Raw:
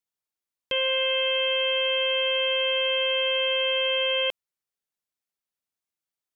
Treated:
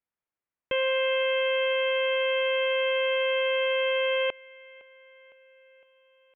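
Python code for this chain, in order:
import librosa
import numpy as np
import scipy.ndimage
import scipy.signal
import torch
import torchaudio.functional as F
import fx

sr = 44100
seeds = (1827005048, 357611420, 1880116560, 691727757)

p1 = scipy.signal.sosfilt(scipy.signal.butter(4, 2400.0, 'lowpass', fs=sr, output='sos'), x)
p2 = p1 + fx.echo_feedback(p1, sr, ms=509, feedback_pct=58, wet_db=-22.5, dry=0)
y = p2 * librosa.db_to_amplitude(2.0)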